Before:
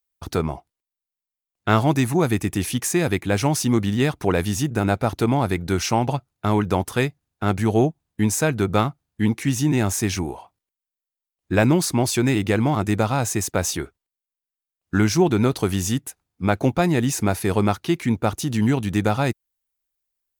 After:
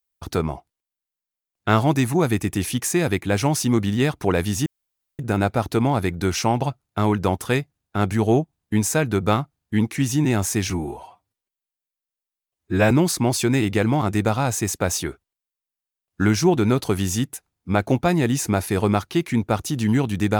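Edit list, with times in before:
4.66 insert room tone 0.53 s
10.17–11.64 stretch 1.5×

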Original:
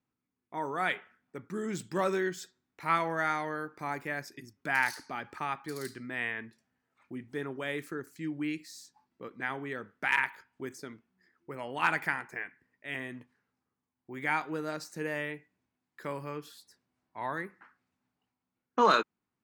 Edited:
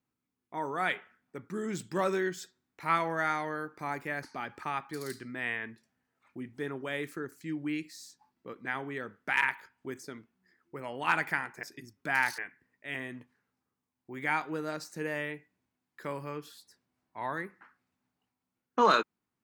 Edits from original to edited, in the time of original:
4.23–4.98 move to 12.38

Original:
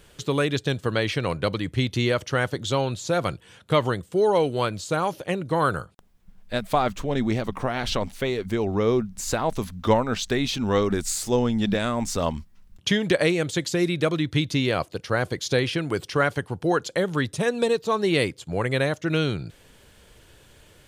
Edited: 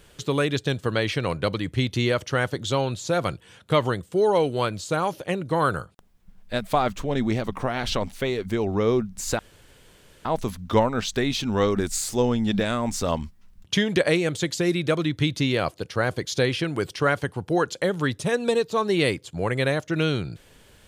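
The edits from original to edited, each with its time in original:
9.39 insert room tone 0.86 s

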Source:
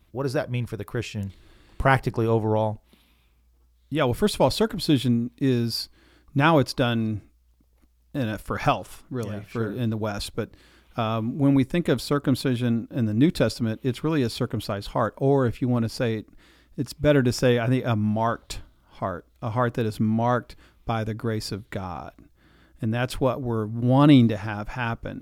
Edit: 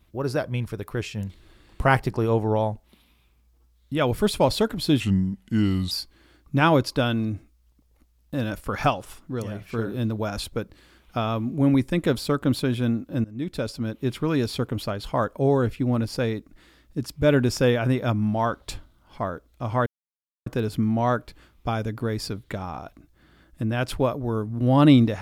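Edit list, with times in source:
5–5.73 speed 80%
13.06–13.92 fade in, from -20.5 dB
19.68 insert silence 0.60 s

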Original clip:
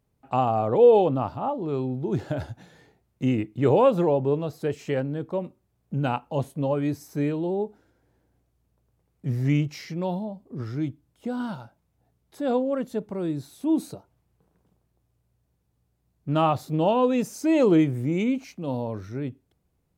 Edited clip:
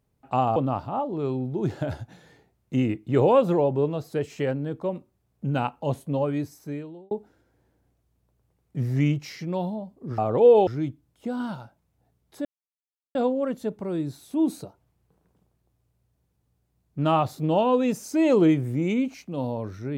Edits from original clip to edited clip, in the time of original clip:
0.56–1.05 move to 10.67
6.71–7.6 fade out
12.45 insert silence 0.70 s

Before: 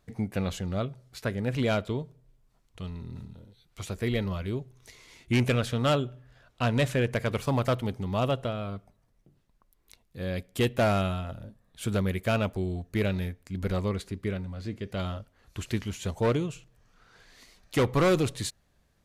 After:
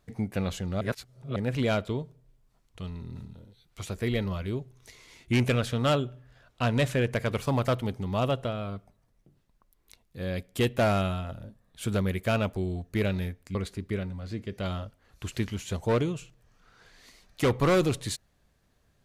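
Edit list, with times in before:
0.81–1.36 reverse
13.55–13.89 cut

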